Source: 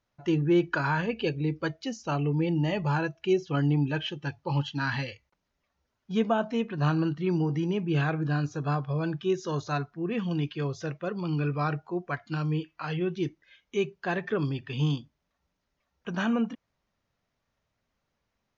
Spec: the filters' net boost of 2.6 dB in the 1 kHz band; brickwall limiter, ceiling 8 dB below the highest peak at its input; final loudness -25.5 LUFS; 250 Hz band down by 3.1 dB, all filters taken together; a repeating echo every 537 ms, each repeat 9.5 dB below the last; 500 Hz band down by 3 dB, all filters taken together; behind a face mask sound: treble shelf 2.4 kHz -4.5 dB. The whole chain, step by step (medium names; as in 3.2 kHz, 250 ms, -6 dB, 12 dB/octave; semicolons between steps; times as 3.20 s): peaking EQ 250 Hz -4 dB; peaking EQ 500 Hz -3.5 dB; peaking EQ 1 kHz +5.5 dB; peak limiter -20.5 dBFS; treble shelf 2.4 kHz -4.5 dB; feedback delay 537 ms, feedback 33%, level -9.5 dB; trim +6.5 dB